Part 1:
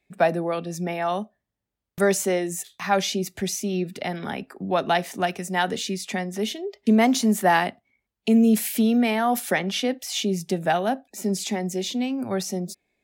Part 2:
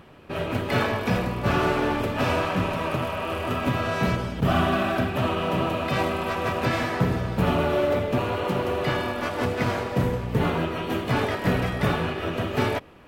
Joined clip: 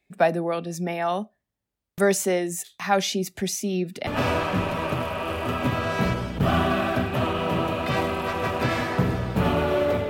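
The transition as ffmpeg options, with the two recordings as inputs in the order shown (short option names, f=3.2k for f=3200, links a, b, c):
-filter_complex "[0:a]apad=whole_dur=10.09,atrim=end=10.09,atrim=end=4.072[a];[1:a]atrim=start=2.088:end=8.11[b];[a][b]acrossfade=d=0.004:c1=hsin:c2=hsin"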